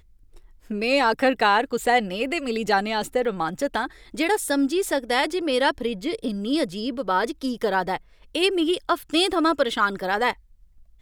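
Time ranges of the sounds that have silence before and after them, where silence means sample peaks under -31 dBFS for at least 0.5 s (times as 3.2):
0.71–10.33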